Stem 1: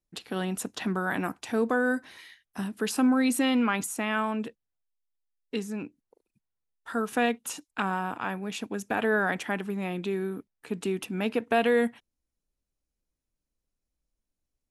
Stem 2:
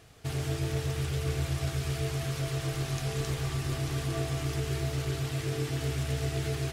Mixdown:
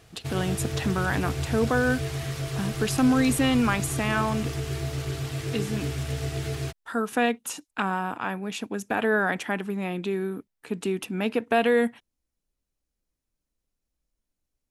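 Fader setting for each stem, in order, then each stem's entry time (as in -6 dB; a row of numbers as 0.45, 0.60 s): +2.0, +1.0 dB; 0.00, 0.00 s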